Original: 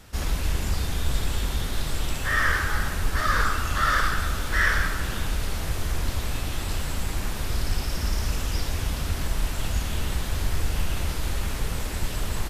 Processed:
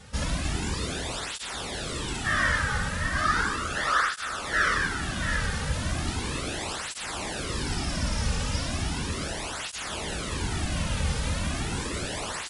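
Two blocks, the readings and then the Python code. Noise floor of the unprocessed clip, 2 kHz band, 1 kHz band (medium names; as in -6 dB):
-31 dBFS, -0.5 dB, 0.0 dB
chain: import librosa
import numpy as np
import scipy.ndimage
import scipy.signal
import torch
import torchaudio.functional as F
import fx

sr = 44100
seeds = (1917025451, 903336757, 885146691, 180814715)

p1 = fx.brickwall_lowpass(x, sr, high_hz=11000.0)
p2 = p1 + 10.0 ** (-8.0 / 20.0) * np.pad(p1, (int(681 * sr / 1000.0), 0))[:len(p1)]
p3 = fx.rider(p2, sr, range_db=10, speed_s=2.0)
p4 = p2 + F.gain(torch.from_numpy(p3), 1.0).numpy()
p5 = fx.flanger_cancel(p4, sr, hz=0.36, depth_ms=3.1)
y = F.gain(torch.from_numpy(p5), -3.5).numpy()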